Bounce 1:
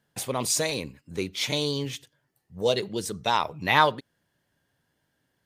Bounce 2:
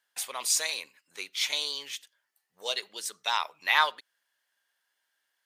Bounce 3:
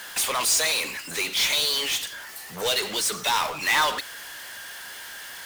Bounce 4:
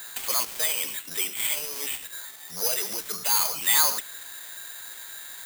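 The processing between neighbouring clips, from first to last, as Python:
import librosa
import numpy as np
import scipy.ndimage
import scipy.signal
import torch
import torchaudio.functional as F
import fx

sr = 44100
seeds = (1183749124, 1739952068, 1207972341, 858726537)

y1 = scipy.signal.sosfilt(scipy.signal.butter(2, 1200.0, 'highpass', fs=sr, output='sos'), x)
y2 = fx.power_curve(y1, sr, exponent=0.35)
y2 = F.gain(torch.from_numpy(y2), -6.0).numpy()
y3 = (np.kron(scipy.signal.resample_poly(y2, 1, 8), np.eye(8)[0]) * 8)[:len(y2)]
y3 = F.gain(torch.from_numpy(y3), -7.0).numpy()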